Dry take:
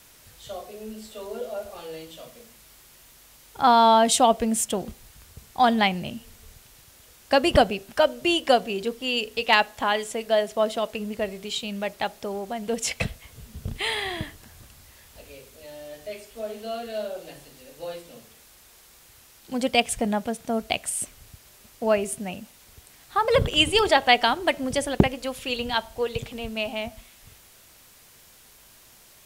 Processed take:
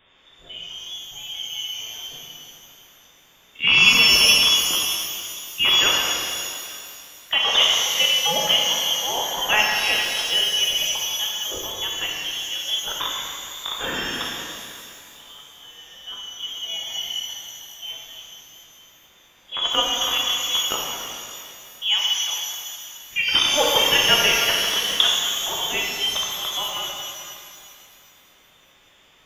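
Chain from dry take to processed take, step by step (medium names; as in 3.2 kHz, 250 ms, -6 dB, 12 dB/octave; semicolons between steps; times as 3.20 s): rattle on loud lows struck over -28 dBFS, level -14 dBFS; frequency inversion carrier 3.6 kHz; pitch-shifted reverb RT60 2.4 s, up +12 st, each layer -8 dB, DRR -3 dB; trim -3 dB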